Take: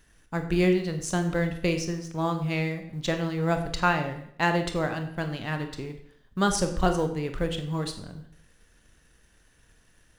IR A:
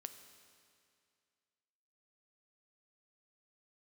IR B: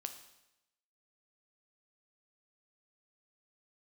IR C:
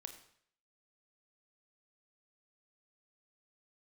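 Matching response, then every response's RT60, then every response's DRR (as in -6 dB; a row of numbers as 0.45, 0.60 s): C; 2.3, 0.90, 0.60 s; 8.5, 6.5, 6.5 dB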